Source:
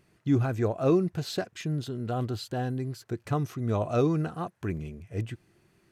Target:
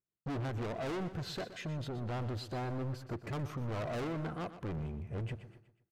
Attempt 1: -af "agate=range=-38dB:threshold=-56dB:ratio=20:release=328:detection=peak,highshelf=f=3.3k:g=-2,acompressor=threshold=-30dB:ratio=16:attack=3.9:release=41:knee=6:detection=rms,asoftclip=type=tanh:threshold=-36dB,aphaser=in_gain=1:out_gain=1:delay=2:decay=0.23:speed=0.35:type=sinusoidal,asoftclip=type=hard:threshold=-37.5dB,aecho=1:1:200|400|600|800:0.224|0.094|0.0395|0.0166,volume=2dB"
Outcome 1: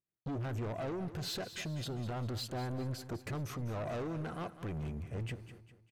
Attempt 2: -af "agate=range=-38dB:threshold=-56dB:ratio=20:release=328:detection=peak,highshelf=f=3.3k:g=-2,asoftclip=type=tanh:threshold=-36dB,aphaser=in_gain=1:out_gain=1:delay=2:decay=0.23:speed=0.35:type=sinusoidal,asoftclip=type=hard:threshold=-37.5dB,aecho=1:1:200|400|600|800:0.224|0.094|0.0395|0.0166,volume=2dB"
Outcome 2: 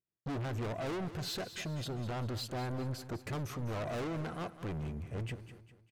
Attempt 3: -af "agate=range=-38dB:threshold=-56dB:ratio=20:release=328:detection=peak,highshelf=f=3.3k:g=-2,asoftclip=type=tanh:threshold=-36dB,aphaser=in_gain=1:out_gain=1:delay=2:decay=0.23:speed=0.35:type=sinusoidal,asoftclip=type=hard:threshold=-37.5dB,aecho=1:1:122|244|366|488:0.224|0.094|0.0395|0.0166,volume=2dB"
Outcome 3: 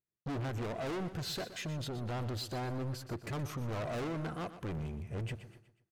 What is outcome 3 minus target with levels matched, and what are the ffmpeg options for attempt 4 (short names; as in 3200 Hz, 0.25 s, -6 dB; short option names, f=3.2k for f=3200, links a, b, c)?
8000 Hz band +6.5 dB
-af "agate=range=-38dB:threshold=-56dB:ratio=20:release=328:detection=peak,highshelf=f=3.3k:g=-14,asoftclip=type=tanh:threshold=-36dB,aphaser=in_gain=1:out_gain=1:delay=2:decay=0.23:speed=0.35:type=sinusoidal,asoftclip=type=hard:threshold=-37.5dB,aecho=1:1:122|244|366|488:0.224|0.094|0.0395|0.0166,volume=2dB"